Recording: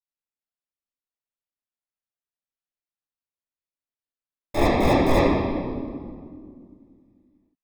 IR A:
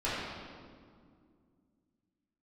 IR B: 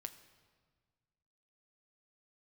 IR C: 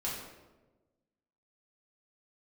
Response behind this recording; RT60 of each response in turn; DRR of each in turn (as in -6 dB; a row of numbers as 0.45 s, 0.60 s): A; 2.1 s, 1.6 s, 1.2 s; -11.5 dB, 7.5 dB, -7.0 dB